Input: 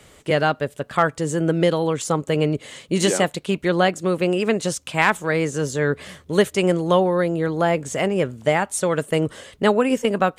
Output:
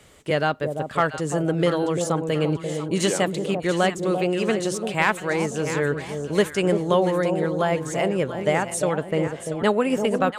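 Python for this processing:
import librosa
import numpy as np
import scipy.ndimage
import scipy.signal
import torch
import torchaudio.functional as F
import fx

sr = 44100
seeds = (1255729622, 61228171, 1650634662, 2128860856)

y = fx.lowpass(x, sr, hz=2000.0, slope=6, at=(8.96, 9.64))
y = fx.echo_alternate(y, sr, ms=343, hz=860.0, feedback_pct=61, wet_db=-6)
y = y * 10.0 ** (-3.0 / 20.0)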